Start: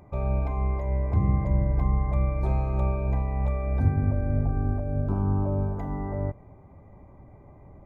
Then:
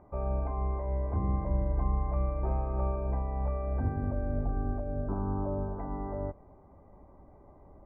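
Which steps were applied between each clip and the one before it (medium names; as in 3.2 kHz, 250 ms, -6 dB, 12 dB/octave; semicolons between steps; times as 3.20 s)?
low-pass 1.6 kHz 24 dB/octave; peaking EQ 120 Hz -10.5 dB 1.2 oct; trim -2 dB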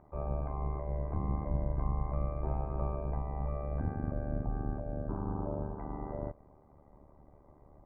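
AM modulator 74 Hz, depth 75%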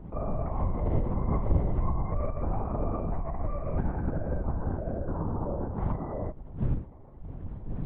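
wind noise 110 Hz -39 dBFS; LPC vocoder at 8 kHz whisper; trim +4.5 dB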